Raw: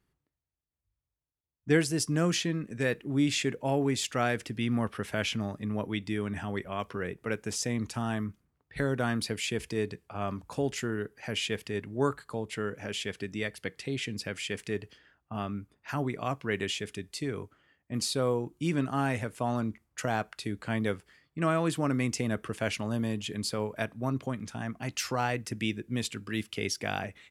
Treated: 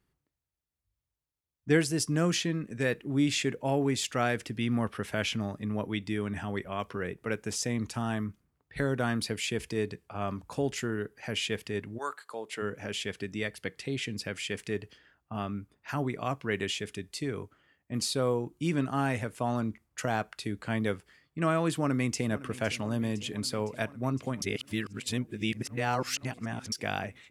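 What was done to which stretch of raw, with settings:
11.97–12.61 HPF 1000 Hz -> 290 Hz
21.69–22.28 echo throw 0.51 s, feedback 80%, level -17 dB
24.42–26.72 reverse

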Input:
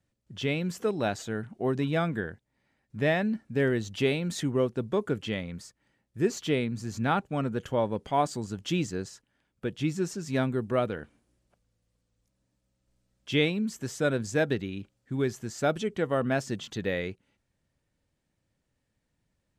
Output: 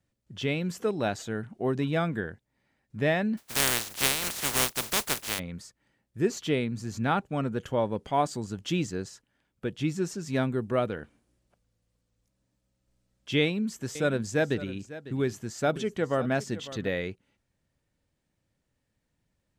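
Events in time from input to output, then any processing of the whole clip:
3.37–5.38 spectral contrast lowered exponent 0.16
13.4–16.88 echo 0.551 s -15.5 dB

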